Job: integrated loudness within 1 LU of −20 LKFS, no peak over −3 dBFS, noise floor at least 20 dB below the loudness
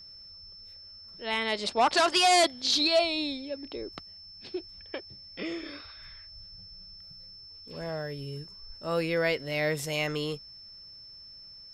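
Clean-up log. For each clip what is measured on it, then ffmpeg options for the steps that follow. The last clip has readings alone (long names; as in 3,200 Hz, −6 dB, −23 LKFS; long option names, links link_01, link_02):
interfering tone 5,300 Hz; level of the tone −46 dBFS; integrated loudness −28.0 LKFS; sample peak −13.0 dBFS; target loudness −20.0 LKFS
→ -af "bandreject=frequency=5300:width=30"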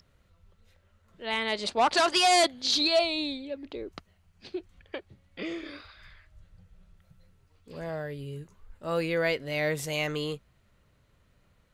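interfering tone none found; integrated loudness −27.5 LKFS; sample peak −13.0 dBFS; target loudness −20.0 LKFS
→ -af "volume=7.5dB"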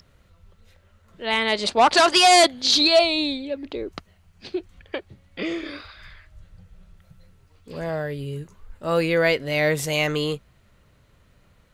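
integrated loudness −20.0 LKFS; sample peak −5.5 dBFS; background noise floor −59 dBFS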